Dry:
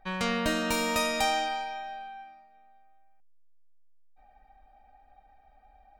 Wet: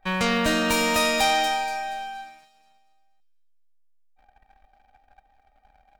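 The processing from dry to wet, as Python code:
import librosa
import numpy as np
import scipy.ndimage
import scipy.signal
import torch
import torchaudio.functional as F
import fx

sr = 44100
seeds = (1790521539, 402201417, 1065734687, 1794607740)

p1 = fx.peak_eq(x, sr, hz=2400.0, db=2.0, octaves=0.77)
p2 = fx.leveller(p1, sr, passes=2)
y = p2 + fx.echo_wet_highpass(p2, sr, ms=237, feedback_pct=38, hz=3800.0, wet_db=-7.5, dry=0)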